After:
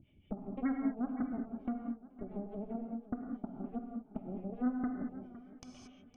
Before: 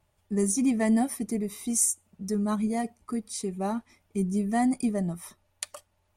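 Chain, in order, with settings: harmonic tremolo 5.8 Hz, depth 100%, crossover 450 Hz; compressor 10:1, threshold -32 dBFS, peak gain reduction 12 dB; vocal tract filter i; treble ducked by the level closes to 830 Hz, closed at -38.5 dBFS; added harmonics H 3 -20 dB, 6 -23 dB, 7 -19 dB, 8 -19 dB, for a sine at -27.5 dBFS; reverb, pre-delay 3 ms, DRR 3 dB; upward compressor, threshold -35 dBFS; notch 950 Hz, Q 5; warbling echo 0.51 s, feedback 55%, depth 85 cents, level -16 dB; gain +3 dB

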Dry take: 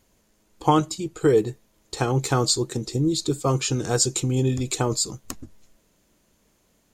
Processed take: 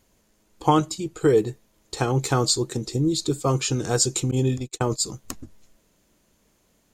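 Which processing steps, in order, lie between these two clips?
4.31–5.01 gate -24 dBFS, range -41 dB

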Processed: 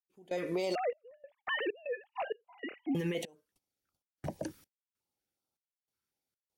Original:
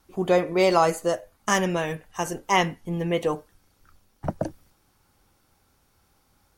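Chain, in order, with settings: 0.75–2.95 sine-wave speech; 1.71–1.93 spectral gain 740–2600 Hz -23 dB; gate -50 dBFS, range -25 dB; HPF 360 Hz 6 dB/oct; bell 1100 Hz -5.5 dB 0.24 oct; compressor 4:1, threshold -25 dBFS, peak gain reduction 8.5 dB; limiter -27 dBFS, peak gain reduction 10.5 dB; step gate "..xxxx..xxx.xxx" 97 bpm -24 dB; stepped notch 5.4 Hz 690–1800 Hz; gain +3 dB

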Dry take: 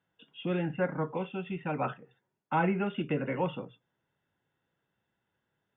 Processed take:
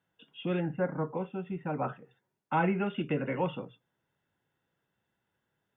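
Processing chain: 0.6–1.94 bell 3100 Hz -12 dB 1.3 oct

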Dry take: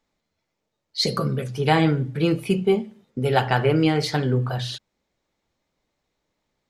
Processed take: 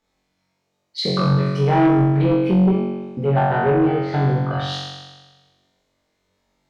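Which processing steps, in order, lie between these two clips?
treble ducked by the level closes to 1100 Hz, closed at -18 dBFS; flutter echo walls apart 3.7 m, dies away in 1.3 s; added harmonics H 5 -16 dB, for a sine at -1.5 dBFS; gain -5 dB

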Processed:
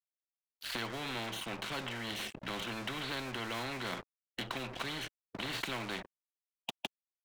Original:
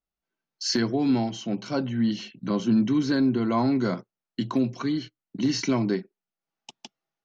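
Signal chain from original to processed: elliptic low-pass 3600 Hz, stop band 40 dB; in parallel at -2 dB: limiter -23 dBFS, peak gain reduction 8 dB; on the sum: crossover distortion -46 dBFS; spectral compressor 4:1; gain -8 dB

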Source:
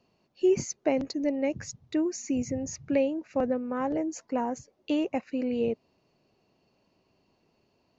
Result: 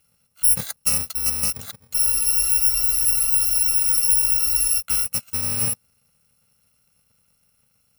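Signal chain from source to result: FFT order left unsorted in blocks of 128 samples; spectral freeze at 2, 2.80 s; gain +5 dB

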